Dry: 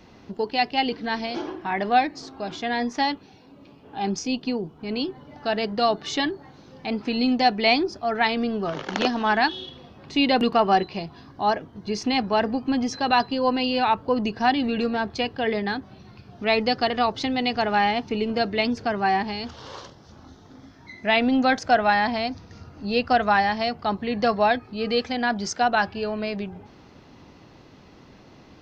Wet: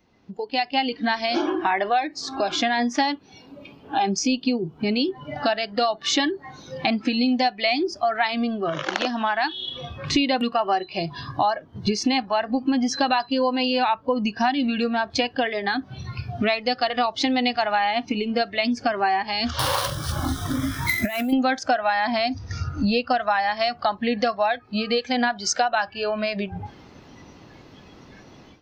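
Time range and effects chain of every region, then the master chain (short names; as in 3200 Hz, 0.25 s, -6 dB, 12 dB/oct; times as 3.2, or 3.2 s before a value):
19.59–21.33 CVSD 64 kbps + negative-ratio compressor -33 dBFS + careless resampling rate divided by 3×, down none, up hold
whole clip: compressor 10:1, threshold -35 dBFS; spectral noise reduction 14 dB; AGC gain up to 16.5 dB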